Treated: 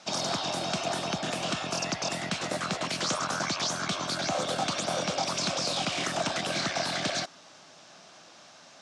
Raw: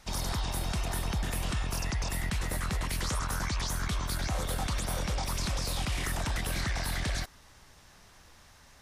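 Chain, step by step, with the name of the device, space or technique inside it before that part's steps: television speaker (speaker cabinet 180–7100 Hz, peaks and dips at 220 Hz -5 dB, 430 Hz -5 dB, 650 Hz +6 dB, 950 Hz -5 dB, 1900 Hz -8 dB); gain +7.5 dB

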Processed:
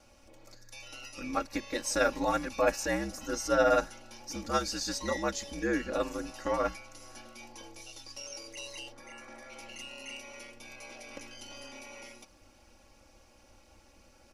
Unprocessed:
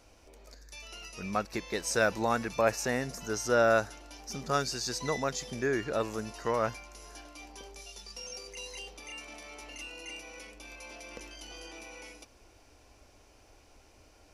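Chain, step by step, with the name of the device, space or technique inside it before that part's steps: 8.92–9.5 resonant high shelf 2200 Hz -6 dB, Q 3; ring-modulated robot voice (ring modulator 65 Hz; comb 3.6 ms, depth 89%)

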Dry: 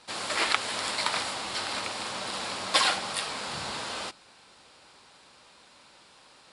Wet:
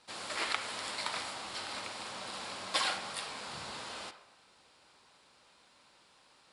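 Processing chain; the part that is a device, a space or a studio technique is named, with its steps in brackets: filtered reverb send (on a send: HPF 560 Hz + LPF 3500 Hz + reverb RT60 0.95 s, pre-delay 32 ms, DRR 9 dB); on the sum: gain -8.5 dB

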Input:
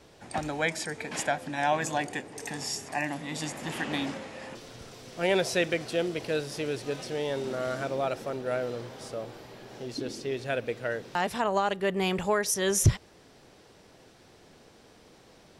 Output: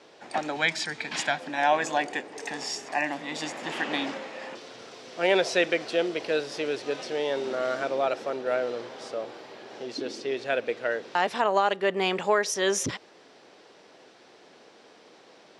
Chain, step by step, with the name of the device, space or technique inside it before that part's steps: 0.56–1.4 ten-band EQ 125 Hz +9 dB, 500 Hz -9 dB, 4000 Hz +6 dB; public-address speaker with an overloaded transformer (core saturation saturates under 150 Hz; BPF 320–5500 Hz); gain +4 dB

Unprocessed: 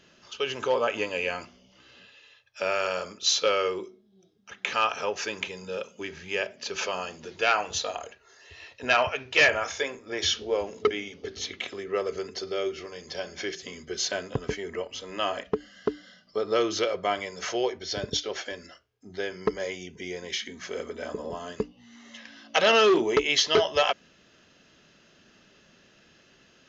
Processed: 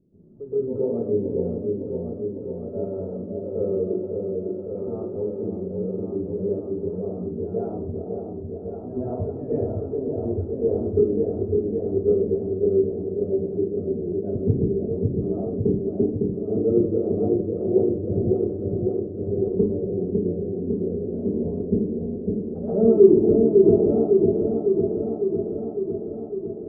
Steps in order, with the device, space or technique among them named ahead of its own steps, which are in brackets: next room (LPF 360 Hz 24 dB/oct; reverb RT60 0.50 s, pre-delay 0.117 s, DRR -11 dB); LPF 2900 Hz; repeats that get brighter 0.554 s, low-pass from 750 Hz, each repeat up 1 oct, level -3 dB

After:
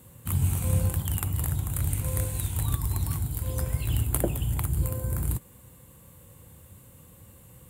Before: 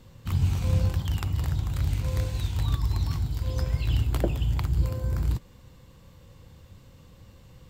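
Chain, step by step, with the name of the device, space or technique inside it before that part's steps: budget condenser microphone (HPF 65 Hz; resonant high shelf 7200 Hz +13 dB, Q 3)

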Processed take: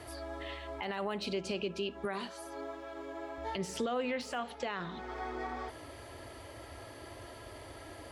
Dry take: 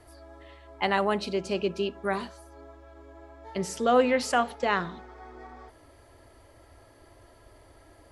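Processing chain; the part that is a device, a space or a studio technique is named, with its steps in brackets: broadcast voice chain (HPF 71 Hz; de-esser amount 90%; compressor 4:1, threshold -40 dBFS, peak gain reduction 19.5 dB; bell 3000 Hz +5 dB 1.1 oct; limiter -32 dBFS, peak gain reduction 9.5 dB); 2.05–3.38 HPF 150 Hz 12 dB/oct; gain +7 dB

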